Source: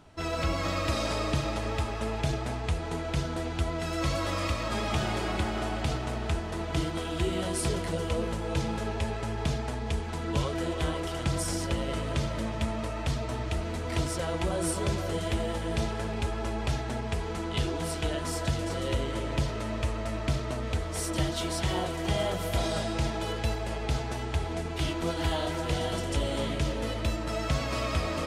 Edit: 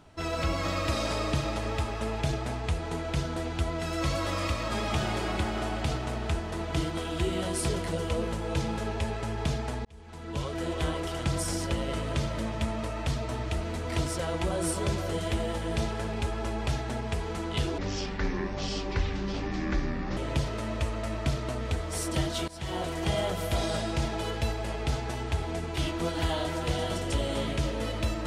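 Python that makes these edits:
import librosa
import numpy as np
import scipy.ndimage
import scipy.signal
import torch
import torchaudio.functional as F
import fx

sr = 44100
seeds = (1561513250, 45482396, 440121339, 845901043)

y = fx.edit(x, sr, fx.fade_in_span(start_s=9.85, length_s=0.91),
    fx.speed_span(start_s=17.78, length_s=1.41, speed=0.59),
    fx.fade_in_from(start_s=21.5, length_s=0.4, floor_db=-21.0), tone=tone)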